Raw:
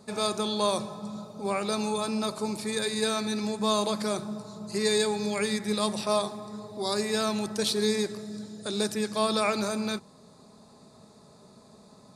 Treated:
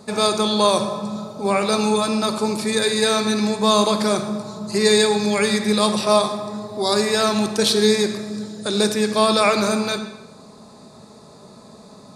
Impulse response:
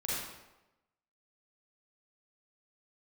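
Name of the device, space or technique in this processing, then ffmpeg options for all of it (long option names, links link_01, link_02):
filtered reverb send: -filter_complex "[0:a]asplit=2[link_01][link_02];[link_02]highpass=160,lowpass=8200[link_03];[1:a]atrim=start_sample=2205[link_04];[link_03][link_04]afir=irnorm=-1:irlink=0,volume=-10.5dB[link_05];[link_01][link_05]amix=inputs=2:normalize=0,volume=8dB"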